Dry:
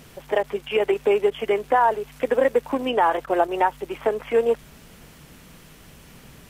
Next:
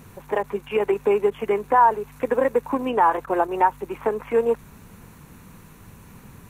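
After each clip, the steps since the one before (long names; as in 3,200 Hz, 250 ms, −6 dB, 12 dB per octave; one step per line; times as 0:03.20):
thirty-one-band graphic EQ 100 Hz +11 dB, 200 Hz +5 dB, 630 Hz −6 dB, 1,000 Hz +6 dB, 2,000 Hz −3 dB, 3,150 Hz −11 dB, 5,000 Hz −11 dB, 8,000 Hz −3 dB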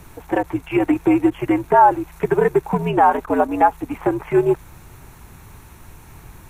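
frequency shifter −86 Hz
level +4 dB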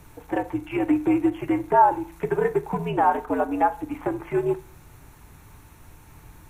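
feedback delay network reverb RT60 0.45 s, low-frequency decay 1×, high-frequency decay 0.8×, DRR 10 dB
level −6.5 dB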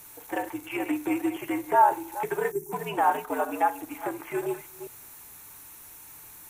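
delay that plays each chunk backwards 203 ms, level −10.5 dB
RIAA equalisation recording
gain on a spectral selection 0:02.51–0:02.72, 430–5,300 Hz −20 dB
level −2.5 dB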